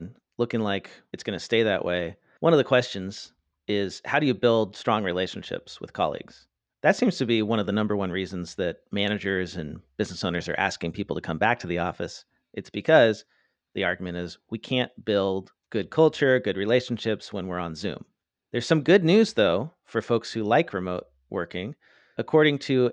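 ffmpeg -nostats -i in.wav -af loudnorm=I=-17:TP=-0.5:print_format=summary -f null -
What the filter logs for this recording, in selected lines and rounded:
Input Integrated:    -25.3 LUFS
Input True Peak:      -6.2 dBTP
Input LRA:             3.2 LU
Input Threshold:     -35.8 LUFS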